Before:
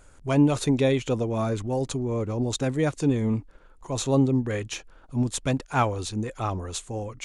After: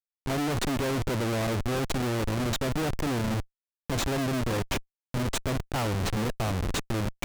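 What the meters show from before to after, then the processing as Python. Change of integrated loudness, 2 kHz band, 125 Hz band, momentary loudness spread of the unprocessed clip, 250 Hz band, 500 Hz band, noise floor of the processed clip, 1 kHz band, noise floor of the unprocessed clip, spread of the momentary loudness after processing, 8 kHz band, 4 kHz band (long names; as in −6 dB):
−3.5 dB, +2.0 dB, −3.0 dB, 11 LU, −5.0 dB, −4.5 dB, below −85 dBFS, −2.0 dB, −53 dBFS, 5 LU, −1.5 dB, +2.0 dB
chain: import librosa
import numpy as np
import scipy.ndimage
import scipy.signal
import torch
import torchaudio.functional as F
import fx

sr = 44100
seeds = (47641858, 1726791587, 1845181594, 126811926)

y = fx.schmitt(x, sr, flips_db=-30.0)
y = fx.doppler_dist(y, sr, depth_ms=0.23)
y = y * librosa.db_to_amplitude(-1.5)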